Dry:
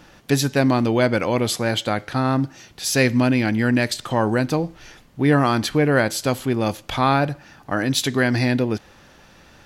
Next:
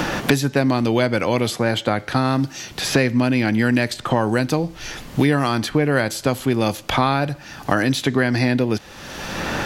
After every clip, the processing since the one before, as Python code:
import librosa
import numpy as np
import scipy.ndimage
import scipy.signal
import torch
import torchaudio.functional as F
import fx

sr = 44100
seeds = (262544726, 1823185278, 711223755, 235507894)

y = fx.band_squash(x, sr, depth_pct=100)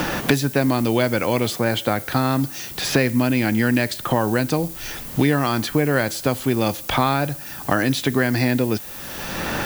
y = fx.dmg_noise_colour(x, sr, seeds[0], colour='violet', level_db=-35.0)
y = y * librosa.db_to_amplitude(-1.0)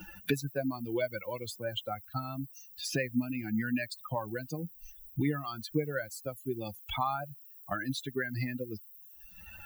y = fx.bin_expand(x, sr, power=3.0)
y = y * librosa.db_to_amplitude(-6.5)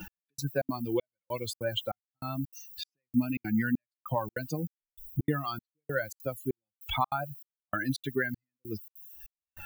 y = fx.step_gate(x, sr, bpm=196, pattern='x....xxx.xxx', floor_db=-60.0, edge_ms=4.5)
y = y * librosa.db_to_amplitude(4.0)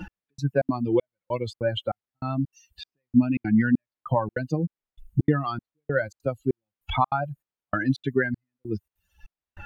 y = fx.spacing_loss(x, sr, db_at_10k=26)
y = y * librosa.db_to_amplitude(8.5)